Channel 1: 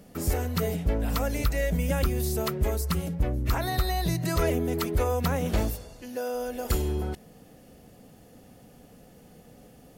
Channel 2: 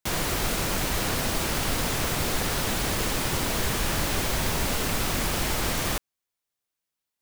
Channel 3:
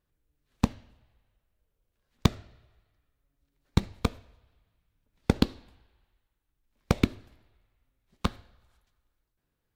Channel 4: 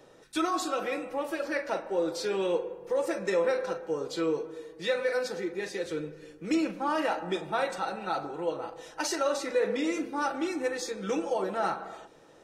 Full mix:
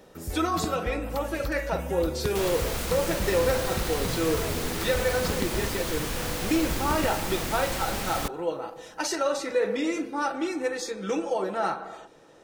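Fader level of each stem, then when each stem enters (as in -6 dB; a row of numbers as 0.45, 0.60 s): -8.0, -5.0, -10.5, +2.0 dB; 0.00, 2.30, 0.00, 0.00 s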